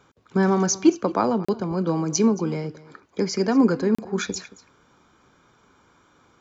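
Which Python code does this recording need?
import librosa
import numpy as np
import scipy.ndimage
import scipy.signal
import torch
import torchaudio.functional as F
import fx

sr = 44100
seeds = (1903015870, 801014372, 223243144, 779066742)

y = fx.fix_interpolate(x, sr, at_s=(1.45, 3.95), length_ms=35.0)
y = fx.fix_echo_inverse(y, sr, delay_ms=224, level_db=-19.0)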